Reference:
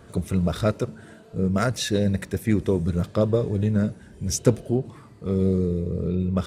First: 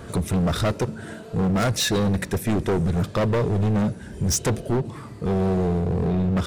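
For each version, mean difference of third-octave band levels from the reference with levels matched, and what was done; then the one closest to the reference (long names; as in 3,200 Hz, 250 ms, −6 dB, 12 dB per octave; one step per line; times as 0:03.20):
5.5 dB: in parallel at −0.5 dB: downward compressor, threshold −33 dBFS, peak gain reduction 19.5 dB
on the sum: gain into a clipping stage and back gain 22.5 dB
level +4 dB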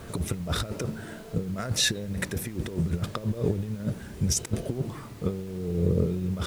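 9.0 dB: compressor whose output falls as the input rises −27 dBFS, ratio −0.5
background noise pink −52 dBFS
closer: first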